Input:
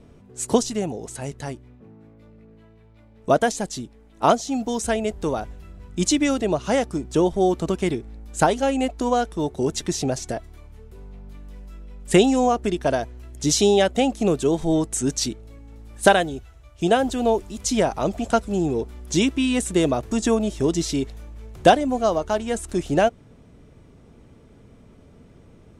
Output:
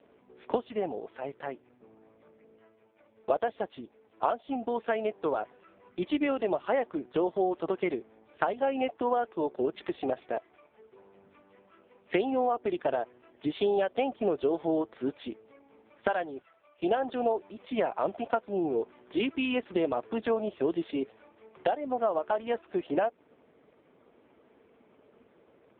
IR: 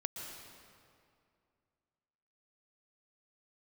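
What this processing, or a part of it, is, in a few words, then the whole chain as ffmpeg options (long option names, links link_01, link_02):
voicemail: -af "highpass=420,lowpass=2900,acompressor=threshold=-22dB:ratio=10" -ar 8000 -c:a libopencore_amrnb -b:a 5150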